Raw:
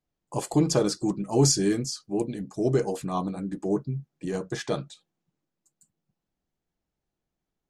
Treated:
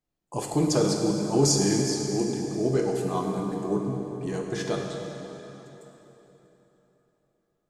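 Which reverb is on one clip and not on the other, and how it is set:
dense smooth reverb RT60 3.7 s, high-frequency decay 0.8×, DRR 0.5 dB
level −1.5 dB

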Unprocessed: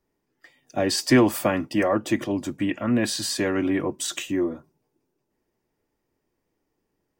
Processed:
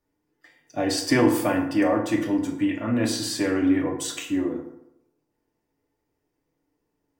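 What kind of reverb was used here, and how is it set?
feedback delay network reverb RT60 0.82 s, low-frequency decay 0.9×, high-frequency decay 0.55×, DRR 0 dB
level −4 dB

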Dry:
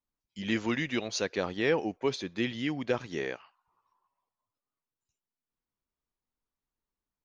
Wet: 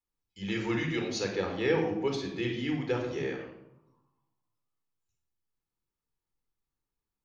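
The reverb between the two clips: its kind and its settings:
rectangular room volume 2,300 cubic metres, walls furnished, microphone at 4.1 metres
level −5 dB

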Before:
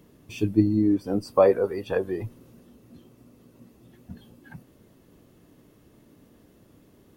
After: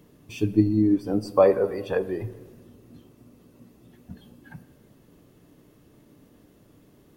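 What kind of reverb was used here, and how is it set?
rectangular room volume 1,500 cubic metres, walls mixed, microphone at 0.39 metres

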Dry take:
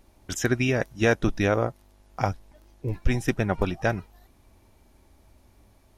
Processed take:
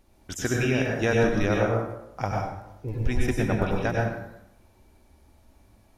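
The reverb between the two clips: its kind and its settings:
dense smooth reverb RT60 0.84 s, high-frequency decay 0.65×, pre-delay 85 ms, DRR −1.5 dB
level −4 dB

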